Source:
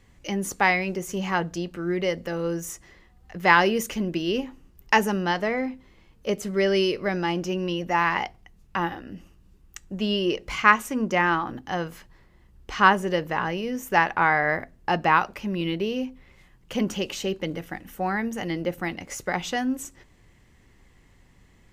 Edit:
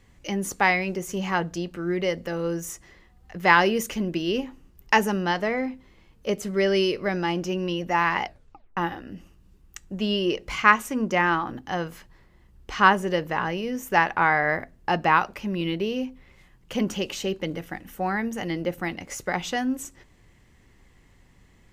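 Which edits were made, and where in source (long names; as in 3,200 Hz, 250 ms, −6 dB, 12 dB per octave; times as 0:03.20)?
0:08.25: tape stop 0.52 s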